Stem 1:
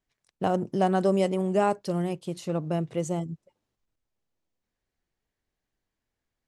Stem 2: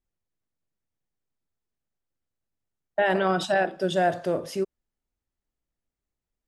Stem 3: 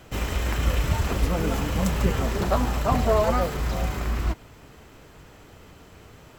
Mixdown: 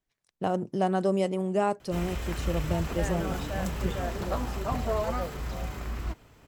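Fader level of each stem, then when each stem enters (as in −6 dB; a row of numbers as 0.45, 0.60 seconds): −2.5, −14.0, −8.0 decibels; 0.00, 0.00, 1.80 seconds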